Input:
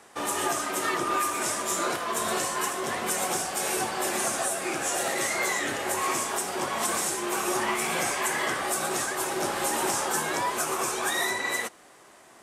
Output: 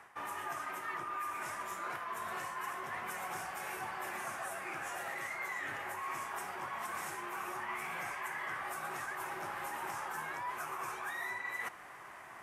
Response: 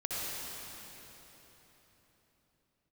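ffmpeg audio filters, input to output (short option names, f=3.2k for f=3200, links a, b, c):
-af "equalizer=f=125:t=o:w=1:g=3,equalizer=f=250:t=o:w=1:g=-7,equalizer=f=500:t=o:w=1:g=-6,equalizer=f=1k:t=o:w=1:g=5,equalizer=f=2k:t=o:w=1:g=6,equalizer=f=4k:t=o:w=1:g=-8,equalizer=f=8k:t=o:w=1:g=-10,areverse,acompressor=threshold=-42dB:ratio=4,areverse,volume=1dB"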